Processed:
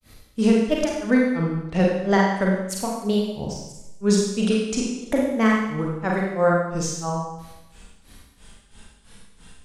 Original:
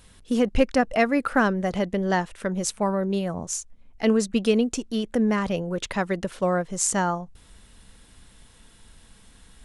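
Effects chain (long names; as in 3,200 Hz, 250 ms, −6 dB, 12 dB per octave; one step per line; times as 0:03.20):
granular cloud 238 ms, grains 3 per second, spray 100 ms, pitch spread up and down by 3 semitones
four-comb reverb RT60 0.92 s, combs from 32 ms, DRR −2.5 dB
level +4 dB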